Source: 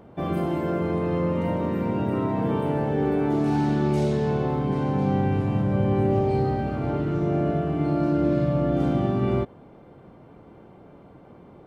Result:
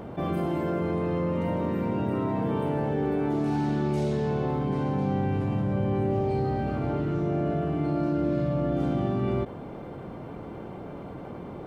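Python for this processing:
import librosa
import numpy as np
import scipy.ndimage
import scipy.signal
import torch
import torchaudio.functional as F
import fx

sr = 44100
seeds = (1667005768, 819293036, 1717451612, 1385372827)

y = fx.env_flatten(x, sr, amount_pct=50)
y = y * 10.0 ** (-5.0 / 20.0)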